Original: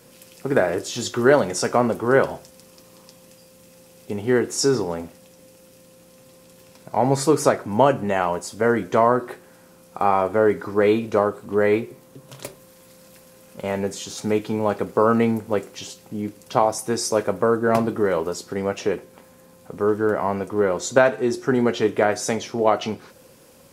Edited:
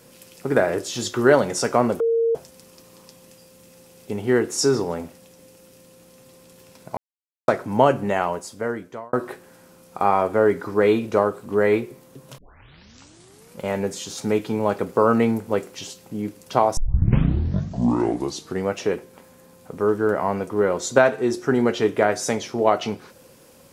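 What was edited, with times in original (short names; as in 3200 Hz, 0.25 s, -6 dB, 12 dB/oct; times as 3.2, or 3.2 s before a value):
2–2.35 bleep 459 Hz -16.5 dBFS
6.97–7.48 mute
8.09–9.13 fade out
12.38 tape start 1.23 s
16.77 tape start 1.89 s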